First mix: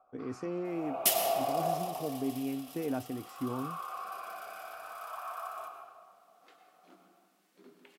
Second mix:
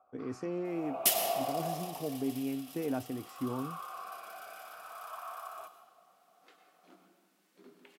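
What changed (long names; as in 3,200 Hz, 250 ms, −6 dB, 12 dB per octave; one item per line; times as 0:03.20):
first sound: send −10.5 dB
master: add high-pass filter 49 Hz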